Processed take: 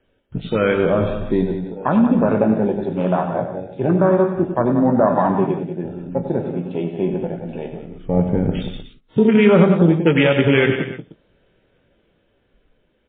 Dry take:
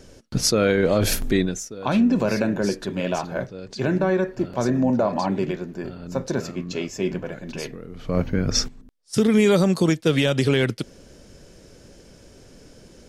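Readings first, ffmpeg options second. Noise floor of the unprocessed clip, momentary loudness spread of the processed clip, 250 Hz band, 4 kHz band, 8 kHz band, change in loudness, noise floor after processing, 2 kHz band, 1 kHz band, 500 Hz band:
−49 dBFS, 14 LU, +4.5 dB, −4.0 dB, below −40 dB, +4.5 dB, −64 dBFS, +4.0 dB, +7.0 dB, +5.0 dB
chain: -filter_complex "[0:a]afwtdn=0.0501,lowshelf=frequency=420:gain=-7,asplit=2[link_01][link_02];[link_02]aecho=0:1:95|100|183|305:0.335|0.133|0.335|0.133[link_03];[link_01][link_03]amix=inputs=2:normalize=0,adynamicequalizer=threshold=0.01:dfrequency=170:dqfactor=3.2:tfrequency=170:tqfactor=3.2:attack=5:release=100:ratio=0.375:range=2:mode=boostabove:tftype=bell,asplit=2[link_04][link_05];[link_05]adelay=18,volume=-11dB[link_06];[link_04][link_06]amix=inputs=2:normalize=0,dynaudnorm=framelen=170:gausssize=17:maxgain=4.5dB,volume=4dB" -ar 8000 -c:a libmp3lame -b:a 16k

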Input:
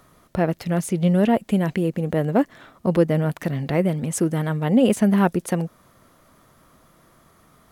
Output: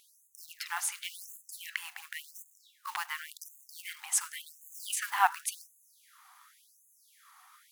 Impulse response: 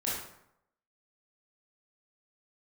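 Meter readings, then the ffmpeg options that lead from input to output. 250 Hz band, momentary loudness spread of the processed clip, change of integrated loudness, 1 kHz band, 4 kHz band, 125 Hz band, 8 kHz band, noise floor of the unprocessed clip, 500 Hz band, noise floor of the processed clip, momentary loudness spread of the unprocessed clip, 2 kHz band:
below −40 dB, 20 LU, −13.0 dB, −5.0 dB, −2.5 dB, below −40 dB, +0.5 dB, −57 dBFS, −34.5 dB, −66 dBFS, 9 LU, −3.5 dB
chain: -filter_complex "[0:a]asplit=2[link_01][link_02];[1:a]atrim=start_sample=2205,lowshelf=frequency=230:gain=12[link_03];[link_02][link_03]afir=irnorm=-1:irlink=0,volume=-22dB[link_04];[link_01][link_04]amix=inputs=2:normalize=0,acrusher=bits=8:mode=log:mix=0:aa=0.000001,afftfilt=real='re*gte(b*sr/1024,700*pow(6400/700,0.5+0.5*sin(2*PI*0.91*pts/sr)))':imag='im*gte(b*sr/1024,700*pow(6400/700,0.5+0.5*sin(2*PI*0.91*pts/sr)))':win_size=1024:overlap=0.75"

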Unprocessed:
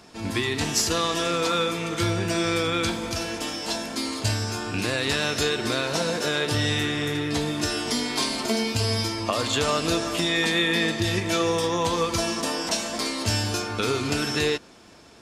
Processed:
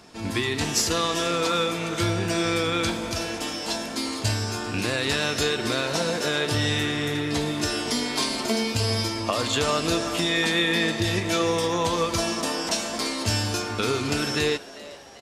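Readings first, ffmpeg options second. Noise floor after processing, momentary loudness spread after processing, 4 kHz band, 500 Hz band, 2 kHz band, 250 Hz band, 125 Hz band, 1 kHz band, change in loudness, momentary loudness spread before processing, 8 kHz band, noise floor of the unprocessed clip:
−40 dBFS, 5 LU, 0.0 dB, 0.0 dB, 0.0 dB, 0.0 dB, 0.0 dB, 0.0 dB, 0.0 dB, 5 LU, 0.0 dB, −49 dBFS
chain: -filter_complex "[0:a]asplit=6[link_01][link_02][link_03][link_04][link_05][link_06];[link_02]adelay=394,afreqshift=130,volume=-18.5dB[link_07];[link_03]adelay=788,afreqshift=260,volume=-23.5dB[link_08];[link_04]adelay=1182,afreqshift=390,volume=-28.6dB[link_09];[link_05]adelay=1576,afreqshift=520,volume=-33.6dB[link_10];[link_06]adelay=1970,afreqshift=650,volume=-38.6dB[link_11];[link_01][link_07][link_08][link_09][link_10][link_11]amix=inputs=6:normalize=0"

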